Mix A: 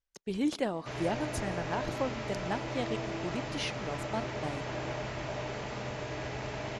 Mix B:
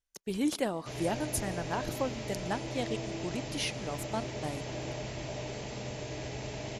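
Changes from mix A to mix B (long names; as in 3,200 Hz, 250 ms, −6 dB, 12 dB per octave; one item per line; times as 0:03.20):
background: add parametric band 1,300 Hz −10.5 dB 1.2 octaves
master: remove high-frequency loss of the air 70 metres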